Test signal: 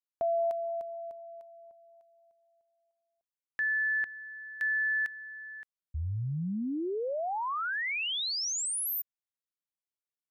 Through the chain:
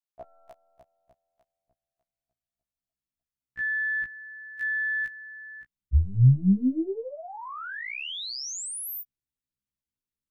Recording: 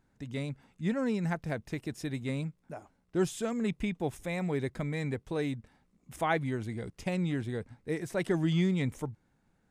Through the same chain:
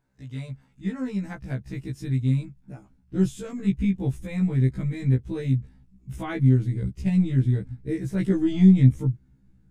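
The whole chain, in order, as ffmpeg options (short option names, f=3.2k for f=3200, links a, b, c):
-af "asubboost=boost=11:cutoff=200,aeval=exprs='0.501*(cos(1*acos(clip(val(0)/0.501,-1,1)))-cos(1*PI/2))+0.0141*(cos(4*acos(clip(val(0)/0.501,-1,1)))-cos(4*PI/2))':c=same,afftfilt=real='re*1.73*eq(mod(b,3),0)':imag='im*1.73*eq(mod(b,3),0)':win_size=2048:overlap=0.75"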